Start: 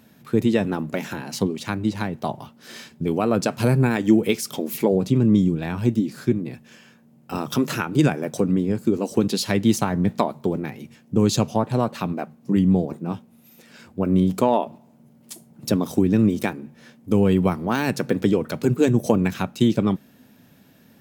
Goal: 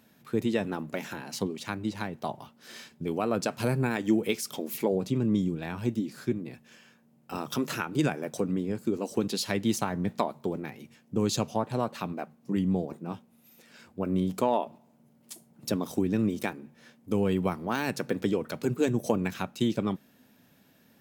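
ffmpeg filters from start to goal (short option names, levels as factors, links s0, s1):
-af "equalizer=f=90:w=0.3:g=-5,volume=0.531"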